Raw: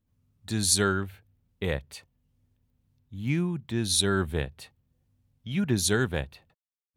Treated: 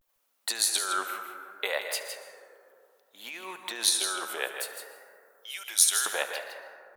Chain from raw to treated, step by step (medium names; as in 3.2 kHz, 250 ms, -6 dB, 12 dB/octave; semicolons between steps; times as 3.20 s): 4.48–6.05 s: differentiator; compressor with a negative ratio -29 dBFS, ratio -0.5; high-pass 570 Hz 24 dB/octave; treble shelf 11 kHz +10 dB; plate-style reverb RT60 2.5 s, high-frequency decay 0.3×, pre-delay 110 ms, DRR 8 dB; vibrato 0.65 Hz 95 cents; multi-tap echo 72/161 ms -18/-8.5 dB; trim +6 dB